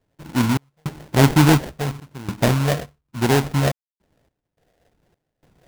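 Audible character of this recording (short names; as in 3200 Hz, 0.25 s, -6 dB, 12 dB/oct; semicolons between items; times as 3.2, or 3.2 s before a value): phasing stages 12, 1 Hz, lowest notch 310–1700 Hz; aliases and images of a low sample rate 1200 Hz, jitter 20%; random-step tremolo 3.5 Hz, depth 100%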